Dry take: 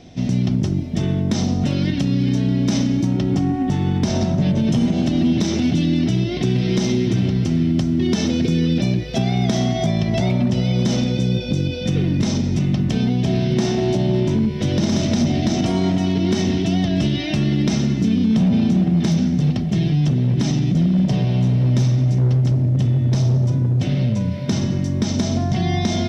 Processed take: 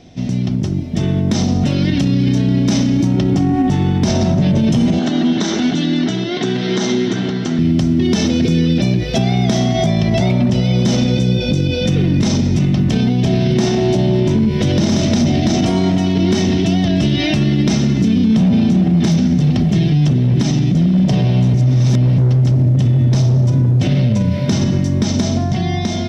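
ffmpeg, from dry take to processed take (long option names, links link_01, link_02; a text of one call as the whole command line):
ffmpeg -i in.wav -filter_complex "[0:a]asettb=1/sr,asplit=3[link_01][link_02][link_03];[link_01]atrim=end=4.994[link_04];[link_02]atrim=start=4.99:end=7.59,asetpts=PTS-STARTPTS,afade=type=in:duration=0.004:curve=qsin,afade=type=out:start_time=2.596:duration=0.004:curve=qsin,highpass=300,equalizer=frequency=330:width_type=q:width=4:gain=-4,equalizer=frequency=550:width_type=q:width=4:gain=-6,equalizer=frequency=1500:width_type=q:width=4:gain=5,equalizer=frequency=2500:width_type=q:width=4:gain=-8,equalizer=frequency=5100:width_type=q:width=4:gain=-7,lowpass=frequency=7000:width=0.5412,lowpass=frequency=7000:width=1.3066[link_05];[link_03]atrim=start=7.586[link_06];[link_04][link_05]acrossfade=duration=0.004:curve1=hsin:curve2=qsin[link_07];[link_07][link_06]acrossfade=duration=0.004:curve1=qsin:curve2=hsin,asplit=5[link_08][link_09][link_10][link_11][link_12];[link_08]atrim=end=20.432[link_13];[link_09]atrim=start=20.428:end=20.982,asetpts=PTS-STARTPTS,volume=-3.5dB[link_14];[link_10]atrim=start=20.978:end=21.542[link_15];[link_11]atrim=start=21.538:end=22.182,asetpts=PTS-STARTPTS,areverse[link_16];[link_12]atrim=start=22.178[link_17];[link_13][link_14]acrossfade=duration=0.004:curve1=hsin:curve2=hsin[link_18];[link_18][link_15]acrossfade=duration=0.004:curve1=hsin:curve2=hsin[link_19];[link_19][link_16]acrossfade=duration=0.004:curve1=hsin:curve2=hsin[link_20];[link_20][link_17]acrossfade=duration=0.004:curve1=hsin:curve2=hsin,dynaudnorm=framelen=200:gausssize=13:maxgain=11.5dB,alimiter=level_in=6.5dB:limit=-1dB:release=50:level=0:latency=1,volume=-6dB" out.wav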